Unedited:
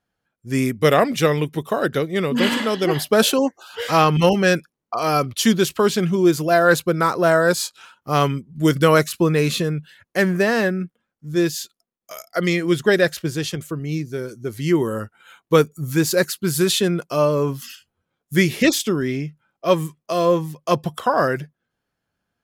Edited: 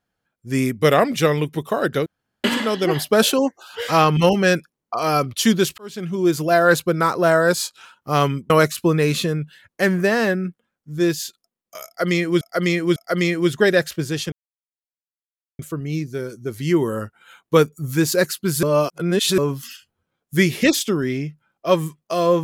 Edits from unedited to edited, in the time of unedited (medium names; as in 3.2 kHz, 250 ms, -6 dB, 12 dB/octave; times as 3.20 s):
2.06–2.44 s: room tone
5.78–6.42 s: fade in
8.50–8.86 s: delete
12.22–12.77 s: loop, 3 plays
13.58 s: insert silence 1.27 s
16.62–17.37 s: reverse